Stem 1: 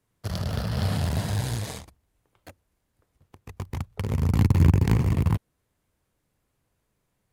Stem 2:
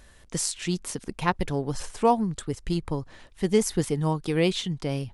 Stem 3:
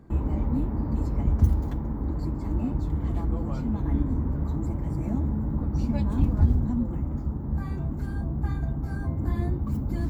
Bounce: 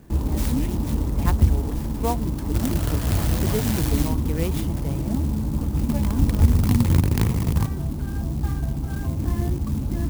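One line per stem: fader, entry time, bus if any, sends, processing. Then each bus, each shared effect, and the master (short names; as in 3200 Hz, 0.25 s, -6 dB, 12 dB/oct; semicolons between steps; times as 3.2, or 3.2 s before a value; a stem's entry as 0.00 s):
-0.5 dB, 2.30 s, no send, high shelf 3700 Hz +11.5 dB
-5.5 dB, 0.00 s, no send, dry
+3.0 dB, 0.00 s, no send, dry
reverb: off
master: clock jitter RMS 0.064 ms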